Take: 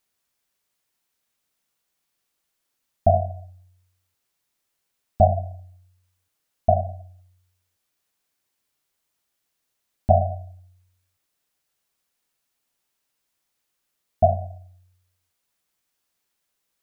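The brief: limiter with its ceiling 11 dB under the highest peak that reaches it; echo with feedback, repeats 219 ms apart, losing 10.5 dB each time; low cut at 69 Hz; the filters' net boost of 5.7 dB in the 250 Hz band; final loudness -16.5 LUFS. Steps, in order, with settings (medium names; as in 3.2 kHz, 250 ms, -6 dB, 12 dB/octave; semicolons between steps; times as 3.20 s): high-pass 69 Hz; peaking EQ 250 Hz +7.5 dB; peak limiter -12.5 dBFS; feedback delay 219 ms, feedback 30%, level -10.5 dB; trim +12 dB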